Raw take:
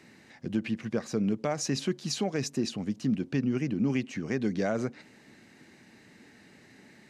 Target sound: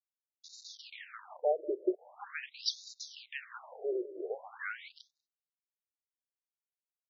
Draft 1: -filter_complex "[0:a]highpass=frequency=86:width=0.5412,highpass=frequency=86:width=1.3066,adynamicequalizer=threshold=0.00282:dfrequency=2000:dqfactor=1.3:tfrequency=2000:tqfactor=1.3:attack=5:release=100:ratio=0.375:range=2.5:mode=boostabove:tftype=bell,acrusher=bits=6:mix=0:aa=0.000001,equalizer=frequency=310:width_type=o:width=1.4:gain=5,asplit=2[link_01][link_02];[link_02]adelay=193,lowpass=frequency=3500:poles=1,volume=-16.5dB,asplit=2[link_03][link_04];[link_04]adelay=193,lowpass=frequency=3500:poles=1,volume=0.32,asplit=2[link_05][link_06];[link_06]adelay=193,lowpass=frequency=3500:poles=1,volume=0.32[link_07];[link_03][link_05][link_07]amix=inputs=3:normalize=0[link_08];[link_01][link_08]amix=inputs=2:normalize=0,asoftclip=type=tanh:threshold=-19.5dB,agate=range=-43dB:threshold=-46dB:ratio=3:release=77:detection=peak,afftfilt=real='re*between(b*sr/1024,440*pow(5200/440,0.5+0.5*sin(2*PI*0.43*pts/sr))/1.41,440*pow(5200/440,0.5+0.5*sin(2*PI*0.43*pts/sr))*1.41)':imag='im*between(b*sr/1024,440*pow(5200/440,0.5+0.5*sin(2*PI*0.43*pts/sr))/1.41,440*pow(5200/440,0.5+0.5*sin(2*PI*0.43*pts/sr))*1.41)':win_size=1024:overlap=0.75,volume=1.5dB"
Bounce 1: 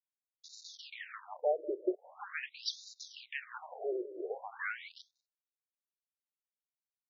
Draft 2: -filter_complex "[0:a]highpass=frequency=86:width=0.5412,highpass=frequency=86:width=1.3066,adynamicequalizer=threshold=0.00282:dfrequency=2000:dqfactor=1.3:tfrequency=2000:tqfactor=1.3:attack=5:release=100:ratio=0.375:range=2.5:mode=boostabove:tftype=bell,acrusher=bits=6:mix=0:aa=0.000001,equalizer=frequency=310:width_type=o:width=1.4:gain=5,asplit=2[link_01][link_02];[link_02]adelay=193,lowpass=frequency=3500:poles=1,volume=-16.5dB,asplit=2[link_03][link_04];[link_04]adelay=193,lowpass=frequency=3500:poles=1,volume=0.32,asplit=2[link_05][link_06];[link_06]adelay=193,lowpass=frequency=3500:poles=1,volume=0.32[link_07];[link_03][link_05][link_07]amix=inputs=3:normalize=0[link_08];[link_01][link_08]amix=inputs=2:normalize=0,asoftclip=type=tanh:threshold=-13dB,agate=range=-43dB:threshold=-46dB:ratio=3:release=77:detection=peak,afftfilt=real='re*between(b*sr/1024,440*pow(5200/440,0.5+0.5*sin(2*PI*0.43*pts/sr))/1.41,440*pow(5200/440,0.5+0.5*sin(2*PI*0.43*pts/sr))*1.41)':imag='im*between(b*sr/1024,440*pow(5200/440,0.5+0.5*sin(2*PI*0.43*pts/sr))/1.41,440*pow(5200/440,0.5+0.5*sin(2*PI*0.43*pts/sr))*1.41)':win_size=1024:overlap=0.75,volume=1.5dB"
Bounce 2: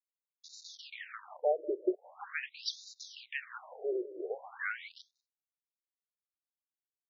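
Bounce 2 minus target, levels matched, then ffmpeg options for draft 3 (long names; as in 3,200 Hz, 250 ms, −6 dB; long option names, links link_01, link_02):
2,000 Hz band +3.0 dB
-filter_complex "[0:a]highpass=frequency=86:width=0.5412,highpass=frequency=86:width=1.3066,adynamicequalizer=threshold=0.00282:dfrequency=5000:dqfactor=1.3:tfrequency=5000:tqfactor=1.3:attack=5:release=100:ratio=0.375:range=2.5:mode=boostabove:tftype=bell,acrusher=bits=6:mix=0:aa=0.000001,equalizer=frequency=310:width_type=o:width=1.4:gain=5,asplit=2[link_01][link_02];[link_02]adelay=193,lowpass=frequency=3500:poles=1,volume=-16.5dB,asplit=2[link_03][link_04];[link_04]adelay=193,lowpass=frequency=3500:poles=1,volume=0.32,asplit=2[link_05][link_06];[link_06]adelay=193,lowpass=frequency=3500:poles=1,volume=0.32[link_07];[link_03][link_05][link_07]amix=inputs=3:normalize=0[link_08];[link_01][link_08]amix=inputs=2:normalize=0,asoftclip=type=tanh:threshold=-13dB,agate=range=-43dB:threshold=-46dB:ratio=3:release=77:detection=peak,afftfilt=real='re*between(b*sr/1024,440*pow(5200/440,0.5+0.5*sin(2*PI*0.43*pts/sr))/1.41,440*pow(5200/440,0.5+0.5*sin(2*PI*0.43*pts/sr))*1.41)':imag='im*between(b*sr/1024,440*pow(5200/440,0.5+0.5*sin(2*PI*0.43*pts/sr))/1.41,440*pow(5200/440,0.5+0.5*sin(2*PI*0.43*pts/sr))*1.41)':win_size=1024:overlap=0.75,volume=1.5dB"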